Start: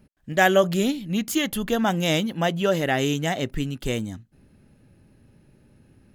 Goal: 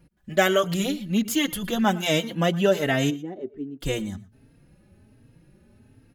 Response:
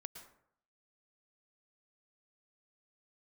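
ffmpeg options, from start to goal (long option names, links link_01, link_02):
-filter_complex "[0:a]asplit=3[link_01][link_02][link_03];[link_01]afade=type=out:start_time=3.09:duration=0.02[link_04];[link_02]bandpass=frequency=350:width_type=q:width=3.6:csg=0,afade=type=in:start_time=3.09:duration=0.02,afade=type=out:start_time=3.79:duration=0.02[link_05];[link_03]afade=type=in:start_time=3.79:duration=0.02[link_06];[link_04][link_05][link_06]amix=inputs=3:normalize=0,asplit=2[link_07][link_08];[1:a]atrim=start_sample=2205,afade=type=out:start_time=0.17:duration=0.01,atrim=end_sample=7938[link_09];[link_08][link_09]afir=irnorm=-1:irlink=0,volume=1dB[link_10];[link_07][link_10]amix=inputs=2:normalize=0,asplit=2[link_11][link_12];[link_12]adelay=3.8,afreqshift=1.3[link_13];[link_11][link_13]amix=inputs=2:normalize=1,volume=-1dB"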